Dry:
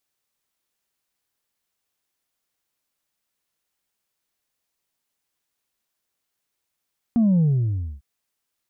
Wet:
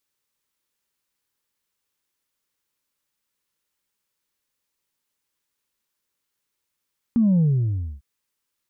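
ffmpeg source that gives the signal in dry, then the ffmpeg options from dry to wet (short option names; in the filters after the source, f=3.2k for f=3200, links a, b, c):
-f lavfi -i "aevalsrc='0.178*clip((0.85-t)/0.61,0,1)*tanh(1.19*sin(2*PI*240*0.85/log(65/240)*(exp(log(65/240)*t/0.85)-1)))/tanh(1.19)':d=0.85:s=44100"
-af "asuperstop=centerf=700:order=4:qfactor=4.1"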